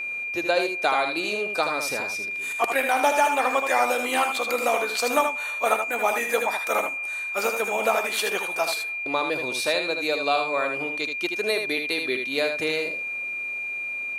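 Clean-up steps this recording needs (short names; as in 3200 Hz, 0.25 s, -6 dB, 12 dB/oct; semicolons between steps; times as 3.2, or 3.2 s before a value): notch 2400 Hz, Q 30; inverse comb 78 ms -6.5 dB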